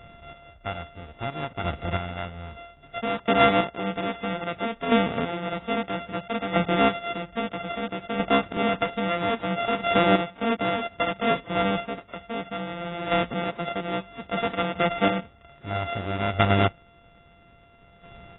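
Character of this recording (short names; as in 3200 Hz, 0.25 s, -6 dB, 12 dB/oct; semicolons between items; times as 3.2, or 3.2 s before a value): a buzz of ramps at a fixed pitch in blocks of 64 samples; chopped level 0.61 Hz, depth 60%, duty 20%; AAC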